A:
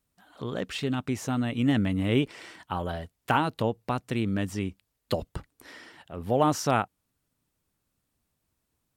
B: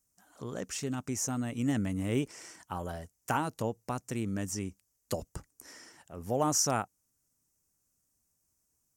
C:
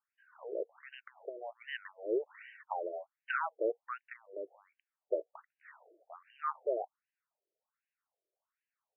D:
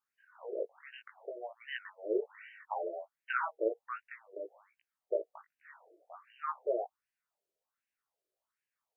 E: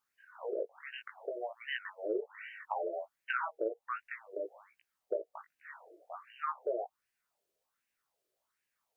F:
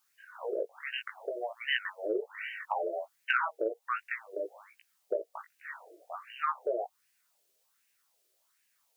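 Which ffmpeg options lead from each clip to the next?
ffmpeg -i in.wav -af "highshelf=frequency=4800:width_type=q:width=3:gain=9,volume=-6dB" out.wav
ffmpeg -i in.wav -af "afftfilt=real='re*between(b*sr/1024,460*pow(2200/460,0.5+0.5*sin(2*PI*1.3*pts/sr))/1.41,460*pow(2200/460,0.5+0.5*sin(2*PI*1.3*pts/sr))*1.41)':imag='im*between(b*sr/1024,460*pow(2200/460,0.5+0.5*sin(2*PI*1.3*pts/sr))/1.41,460*pow(2200/460,0.5+0.5*sin(2*PI*1.3*pts/sr))*1.41)':win_size=1024:overlap=0.75,volume=3.5dB" out.wav
ffmpeg -i in.wav -af "flanger=delay=16:depth=4.1:speed=0.61,volume=3.5dB" out.wav
ffmpeg -i in.wav -af "acompressor=threshold=-40dB:ratio=2.5,volume=5.5dB" out.wav
ffmpeg -i in.wav -af "highshelf=frequency=2000:gain=11.5,volume=2dB" out.wav

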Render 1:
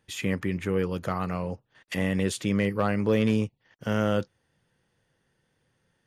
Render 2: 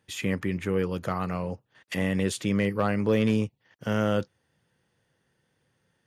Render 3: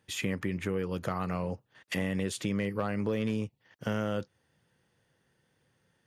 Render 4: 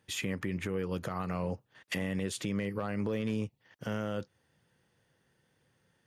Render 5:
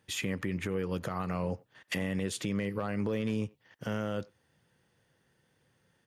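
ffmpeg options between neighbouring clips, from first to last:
ffmpeg -i in.wav -af "highpass=57" out.wav
ffmpeg -i in.wav -af "acompressor=threshold=-28dB:ratio=4" out.wav
ffmpeg -i in.wav -af "alimiter=limit=-23.5dB:level=0:latency=1:release=122" out.wav
ffmpeg -i in.wav -filter_complex "[0:a]asplit=2[link_01][link_02];[link_02]adelay=90,highpass=300,lowpass=3400,asoftclip=type=hard:threshold=-32.5dB,volume=-23dB[link_03];[link_01][link_03]amix=inputs=2:normalize=0,volume=1dB" out.wav

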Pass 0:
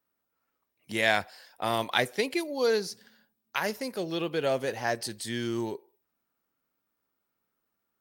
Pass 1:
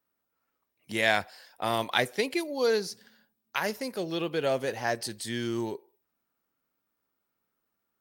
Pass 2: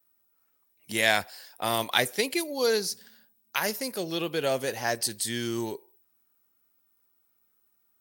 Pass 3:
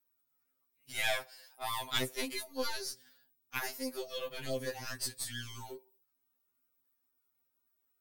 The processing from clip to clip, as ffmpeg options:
ffmpeg -i in.wav -af anull out.wav
ffmpeg -i in.wav -af "crystalizer=i=2:c=0" out.wav
ffmpeg -i in.wav -af "aeval=exprs='0.596*(cos(1*acos(clip(val(0)/0.596,-1,1)))-cos(1*PI/2))+0.106*(cos(4*acos(clip(val(0)/0.596,-1,1)))-cos(4*PI/2))+0.0188*(cos(7*acos(clip(val(0)/0.596,-1,1)))-cos(7*PI/2))':channel_layout=same,afftfilt=real='re*2.45*eq(mod(b,6),0)':imag='im*2.45*eq(mod(b,6),0)':win_size=2048:overlap=0.75,volume=-4.5dB" out.wav

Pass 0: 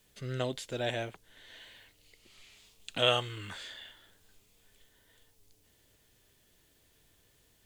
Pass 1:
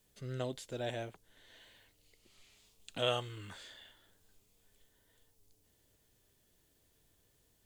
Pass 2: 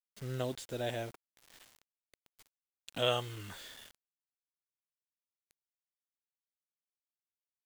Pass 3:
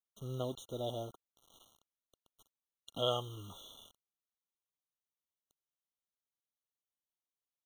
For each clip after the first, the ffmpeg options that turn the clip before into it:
ffmpeg -i in.wav -af "equalizer=frequency=2400:width_type=o:width=2:gain=-5,volume=-4dB" out.wav
ffmpeg -i in.wav -af "acrusher=bits=8:mix=0:aa=0.000001,volume=2dB" out.wav
ffmpeg -i in.wav -af "afftfilt=real='re*eq(mod(floor(b*sr/1024/1400),2),0)':imag='im*eq(mod(floor(b*sr/1024/1400),2),0)':win_size=1024:overlap=0.75,volume=-2dB" out.wav

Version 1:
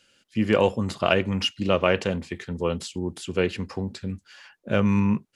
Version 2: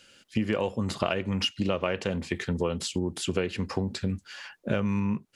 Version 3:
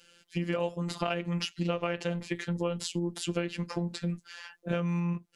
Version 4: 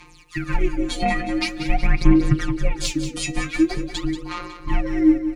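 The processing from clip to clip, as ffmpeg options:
ffmpeg -i in.wav -af "acompressor=threshold=-29dB:ratio=10,volume=5.5dB" out.wav
ffmpeg -i in.wav -af "afftfilt=real='hypot(re,im)*cos(PI*b)':imag='0':win_size=1024:overlap=0.75" out.wav
ffmpeg -i in.wav -filter_complex "[0:a]afreqshift=-490,aphaser=in_gain=1:out_gain=1:delay=4.2:decay=0.79:speed=0.46:type=sinusoidal,asplit=2[link_01][link_02];[link_02]aecho=0:1:184|368|552|736|920|1104:0.299|0.161|0.0871|0.047|0.0254|0.0137[link_03];[link_01][link_03]amix=inputs=2:normalize=0,volume=6dB" out.wav

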